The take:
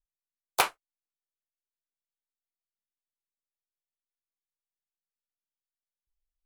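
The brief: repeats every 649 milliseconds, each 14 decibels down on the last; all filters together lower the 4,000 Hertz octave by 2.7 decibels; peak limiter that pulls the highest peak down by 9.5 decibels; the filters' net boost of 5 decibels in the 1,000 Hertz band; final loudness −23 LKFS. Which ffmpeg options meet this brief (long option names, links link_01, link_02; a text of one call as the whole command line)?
ffmpeg -i in.wav -af "equalizer=frequency=1000:width_type=o:gain=6.5,equalizer=frequency=4000:width_type=o:gain=-4,alimiter=limit=-14dB:level=0:latency=1,aecho=1:1:649|1298:0.2|0.0399,volume=12dB" out.wav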